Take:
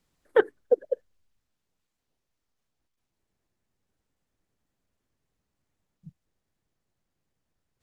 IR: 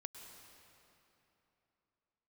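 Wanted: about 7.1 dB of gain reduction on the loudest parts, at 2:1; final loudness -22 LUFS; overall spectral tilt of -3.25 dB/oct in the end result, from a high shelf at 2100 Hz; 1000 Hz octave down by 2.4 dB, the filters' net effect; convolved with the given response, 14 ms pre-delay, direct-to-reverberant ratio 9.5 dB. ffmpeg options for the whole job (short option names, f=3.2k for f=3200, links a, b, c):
-filter_complex "[0:a]equalizer=f=1k:t=o:g=-4.5,highshelf=f=2.1k:g=6.5,acompressor=threshold=-28dB:ratio=2,asplit=2[a][b];[1:a]atrim=start_sample=2205,adelay=14[c];[b][c]afir=irnorm=-1:irlink=0,volume=-5.5dB[d];[a][d]amix=inputs=2:normalize=0,volume=11dB"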